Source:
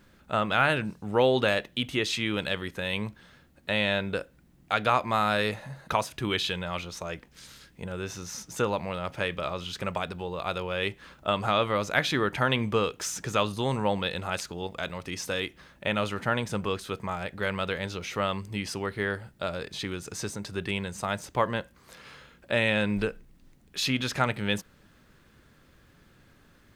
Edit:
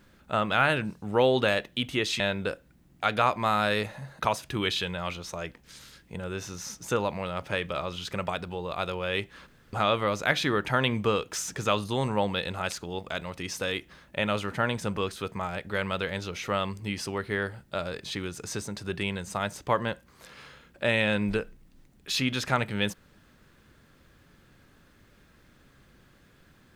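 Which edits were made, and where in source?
0:02.20–0:03.88: remove
0:11.15–0:11.41: fill with room tone

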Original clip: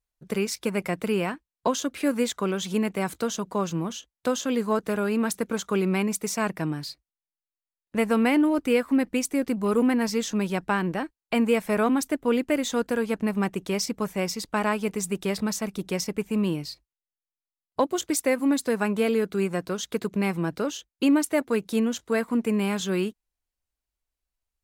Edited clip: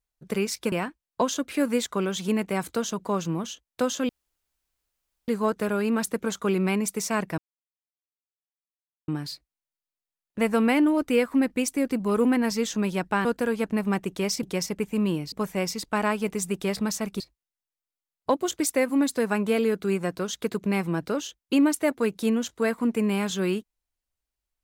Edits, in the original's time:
0:00.72–0:01.18: remove
0:04.55: splice in room tone 1.19 s
0:06.65: splice in silence 1.70 s
0:10.82–0:12.75: remove
0:15.81–0:16.70: move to 0:13.93

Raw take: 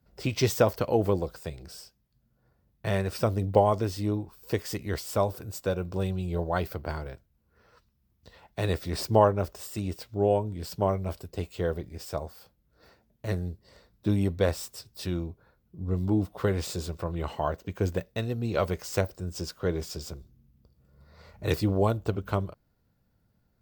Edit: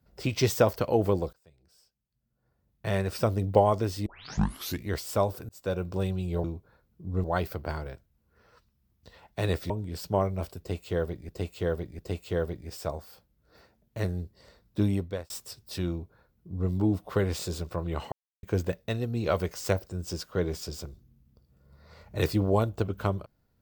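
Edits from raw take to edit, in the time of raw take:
0:01.33–0:03.01: fade in quadratic, from −24 dB
0:04.06: tape start 0.81 s
0:05.49–0:05.75: fade in
0:08.90–0:10.38: remove
0:11.27–0:11.97: repeat, 3 plays
0:14.14–0:14.58: fade out
0:15.18–0:15.98: duplicate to 0:06.44
0:17.40–0:17.71: silence

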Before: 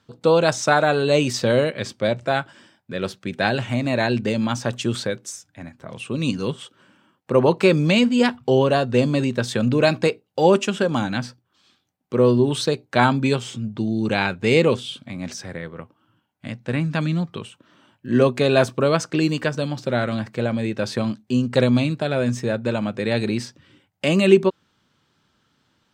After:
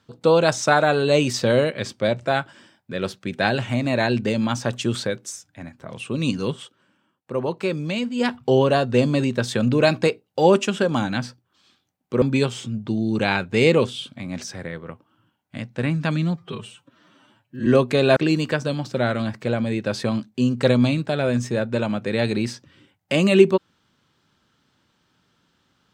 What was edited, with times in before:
0:06.59–0:08.35: duck −8.5 dB, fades 0.20 s
0:12.22–0:13.12: remove
0:17.26–0:18.13: time-stretch 1.5×
0:18.63–0:19.09: remove

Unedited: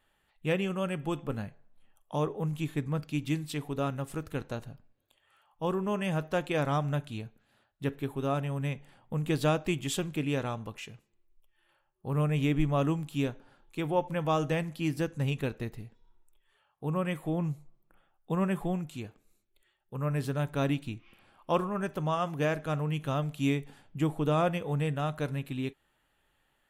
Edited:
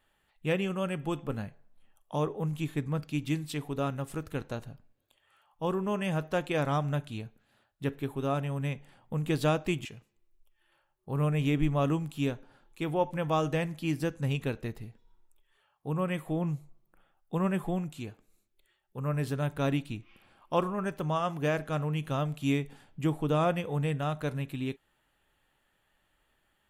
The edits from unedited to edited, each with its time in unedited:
0:09.85–0:10.82: remove

